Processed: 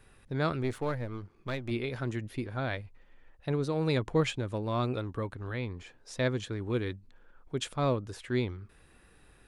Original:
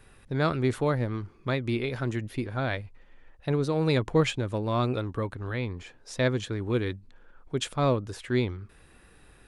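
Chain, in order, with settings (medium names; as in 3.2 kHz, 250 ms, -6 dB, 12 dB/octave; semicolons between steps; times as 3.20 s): 0.63–1.71 s: partial rectifier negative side -7 dB; trim -4 dB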